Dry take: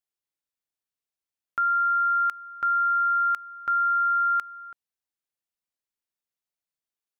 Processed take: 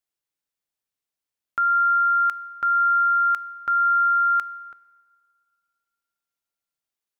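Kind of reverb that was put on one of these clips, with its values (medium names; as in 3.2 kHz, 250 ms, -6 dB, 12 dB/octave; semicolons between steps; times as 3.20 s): FDN reverb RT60 2.2 s, low-frequency decay 0.85×, high-frequency decay 0.6×, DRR 18 dB; trim +2.5 dB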